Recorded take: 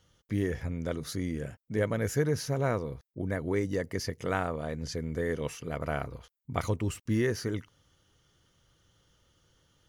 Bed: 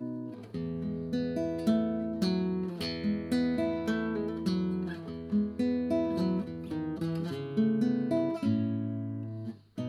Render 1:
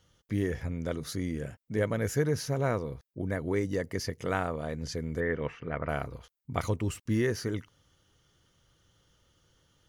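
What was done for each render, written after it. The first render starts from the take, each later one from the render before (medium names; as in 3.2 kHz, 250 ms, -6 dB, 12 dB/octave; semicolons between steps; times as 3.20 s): 5.20–5.89 s: resonant low-pass 1.9 kHz, resonance Q 1.7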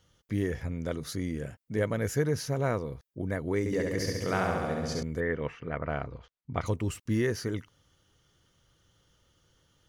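3.59–5.03 s: flutter echo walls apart 11.8 m, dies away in 1.4 s; 5.77–6.66 s: distance through air 160 m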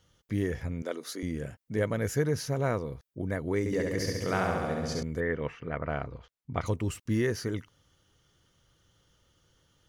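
0.82–1.23 s: high-pass 280 Hz 24 dB/octave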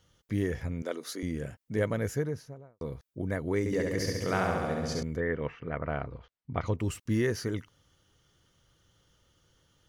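1.85–2.81 s: studio fade out; 5.16–6.79 s: distance through air 130 m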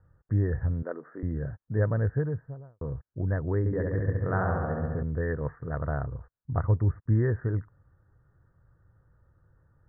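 steep low-pass 1.8 kHz 96 dB/octave; resonant low shelf 160 Hz +7 dB, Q 1.5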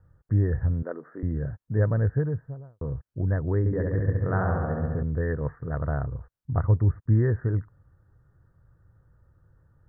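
bass shelf 330 Hz +3.5 dB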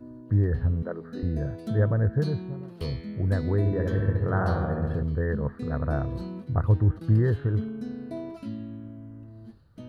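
add bed -7 dB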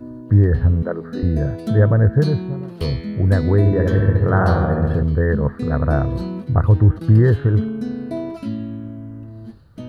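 trim +9.5 dB; peak limiter -3 dBFS, peak gain reduction 2.5 dB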